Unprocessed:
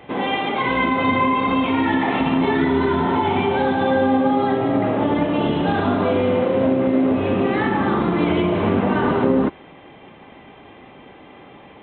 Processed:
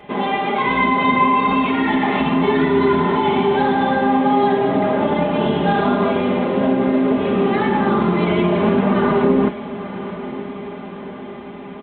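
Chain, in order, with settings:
comb filter 4.9 ms, depth 71%
on a send: feedback delay with all-pass diffusion 1,010 ms, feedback 60%, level −13.5 dB

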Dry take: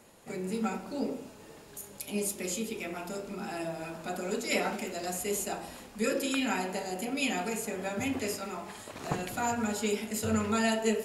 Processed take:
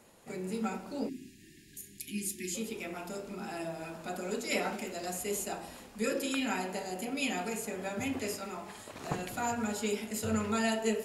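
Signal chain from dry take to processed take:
time-frequency box erased 0:01.08–0:02.55, 390–1,600 Hz
level −2.5 dB

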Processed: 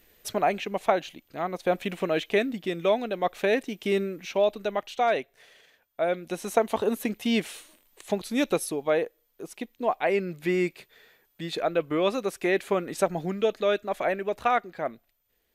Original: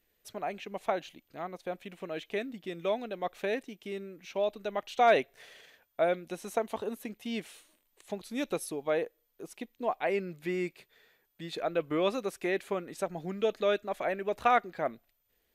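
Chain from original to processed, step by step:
speech leveller 0.5 s
level +6 dB

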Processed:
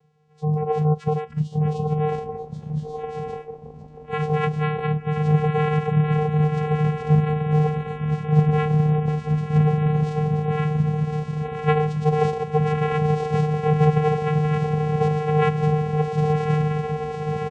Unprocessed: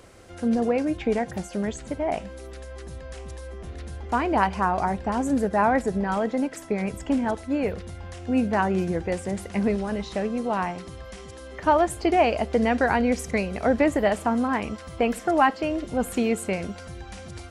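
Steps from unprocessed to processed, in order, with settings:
in parallel at −1 dB: downward compressor 12 to 1, threshold −33 dBFS, peak gain reduction 19 dB
on the sum: comb filter 6.4 ms, depth 50%
on a send: feedback delay with all-pass diffusion 1,144 ms, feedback 68%, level −4 dB
on the sum: pitch-shifted copies added +3 semitones −10 dB
channel vocoder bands 4, square 152 Hz
noise reduction from a noise print of the clip's start 17 dB

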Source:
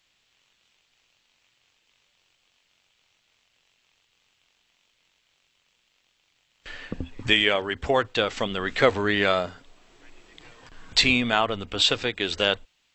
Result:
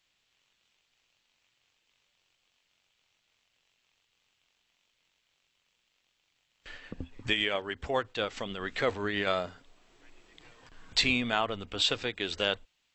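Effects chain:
0:06.75–0:09.27: amplitude tremolo 7.4 Hz, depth 40%
level −6.5 dB

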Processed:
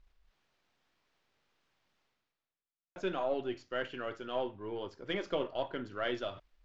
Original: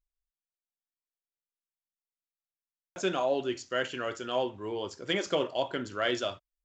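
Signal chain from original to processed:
gain on one half-wave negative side −3 dB
reversed playback
upward compression, threshold −41 dBFS
reversed playback
high-frequency loss of the air 210 metres
level −3 dB

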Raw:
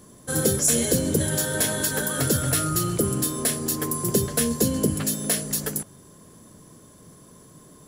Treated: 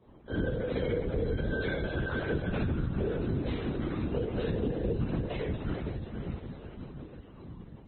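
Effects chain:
low-pass filter 2,000 Hz 6 dB per octave
stiff-string resonator 160 Hz, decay 0.37 s, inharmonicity 0.002
on a send: feedback delay with all-pass diffusion 453 ms, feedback 57%, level −8 dB
on the sum: convolution reverb RT60 1.2 s, pre-delay 6 ms, DRR −5 dB
in parallel at −11.5 dB: asymmetric clip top −30.5 dBFS
on the sum: parametric band 570 Hz +4 dB 0.67 octaves
linear-prediction vocoder at 8 kHz whisper
high-pass filter 60 Hz 6 dB per octave
downward compressor 12 to 1, threshold −26 dBFS, peak gain reduction 7 dB
Ogg Vorbis 16 kbit/s 22,050 Hz

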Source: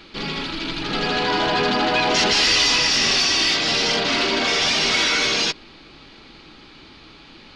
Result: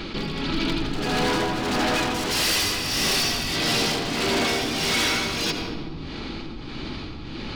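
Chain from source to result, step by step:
low-shelf EQ 430 Hz +8.5 dB
wave folding −15.5 dBFS
amplitude tremolo 1.6 Hz, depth 79%
on a send at −8.5 dB: convolution reverb RT60 1.2 s, pre-delay 77 ms
on the sum: envelope flattener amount 50%
level −2.5 dB

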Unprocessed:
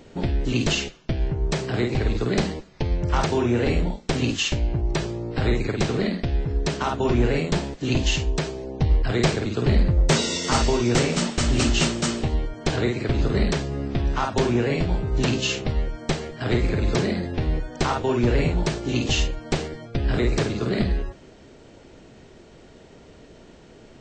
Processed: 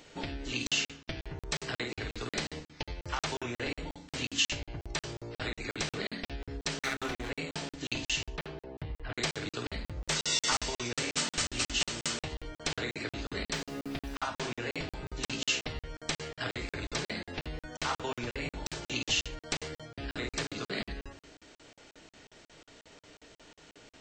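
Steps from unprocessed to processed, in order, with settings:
0:06.79–0:07.30: lower of the sound and its delayed copy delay 0.49 ms
0:08.36–0:09.17: high-frequency loss of the air 350 metres
feedback delay network reverb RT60 0.5 s, low-frequency decay 1.45×, high-frequency decay 0.55×, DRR 8 dB
downward compressor 5 to 1, threshold −22 dBFS, peak gain reduction 9.5 dB
tilt shelving filter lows −8 dB, about 750 Hz
0:13.52–0:14.15: background noise pink −48 dBFS
regular buffer underruns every 0.18 s, samples 2,048, zero, from 0:00.67
level −6.5 dB

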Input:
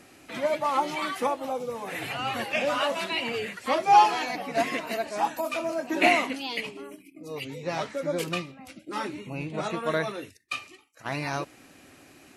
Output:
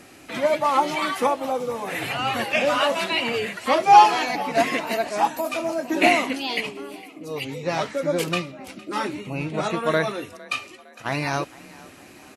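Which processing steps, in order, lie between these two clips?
0:05.27–0:06.27: parametric band 1,500 Hz −3.5 dB 2.8 octaves
echo with shifted repeats 458 ms, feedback 48%, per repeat +33 Hz, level −21.5 dB
level +5.5 dB

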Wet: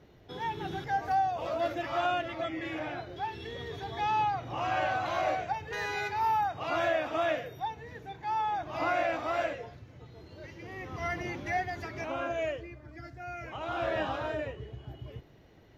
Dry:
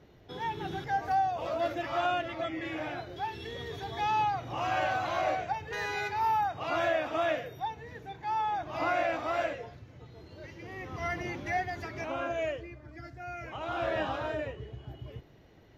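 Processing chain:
0:02.79–0:05.06: high-shelf EQ 6,500 Hz −6.5 dB

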